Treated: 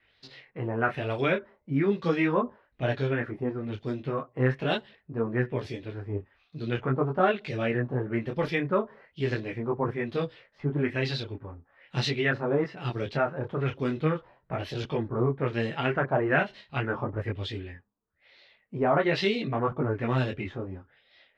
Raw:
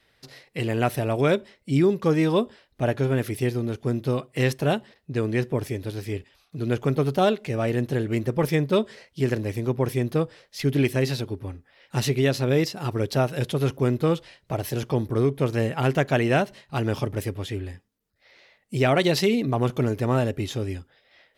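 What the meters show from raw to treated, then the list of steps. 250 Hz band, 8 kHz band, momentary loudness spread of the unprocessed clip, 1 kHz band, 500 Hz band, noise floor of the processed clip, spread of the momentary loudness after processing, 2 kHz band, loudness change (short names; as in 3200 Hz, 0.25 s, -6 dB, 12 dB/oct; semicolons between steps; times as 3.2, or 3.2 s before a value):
-5.5 dB, under -15 dB, 10 LU, -1.5 dB, -4.5 dB, -70 dBFS, 11 LU, 0.0 dB, -4.5 dB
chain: LFO low-pass sine 1.1 Hz 980–4100 Hz; dynamic EQ 1600 Hz, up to +4 dB, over -37 dBFS, Q 1.6; detuned doubles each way 14 cents; gain -2 dB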